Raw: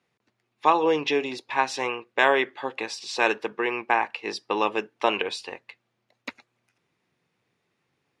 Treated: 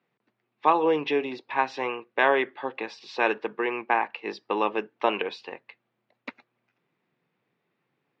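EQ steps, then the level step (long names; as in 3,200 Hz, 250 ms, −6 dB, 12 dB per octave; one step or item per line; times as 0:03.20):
high-pass filter 130 Hz 24 dB per octave
high-frequency loss of the air 250 metres
0.0 dB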